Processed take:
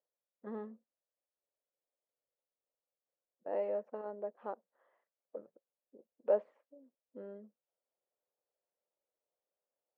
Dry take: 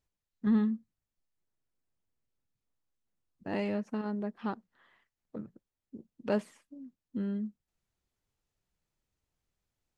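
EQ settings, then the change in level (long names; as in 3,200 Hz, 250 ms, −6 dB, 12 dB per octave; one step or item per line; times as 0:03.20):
four-pole ladder band-pass 600 Hz, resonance 65%
+7.0 dB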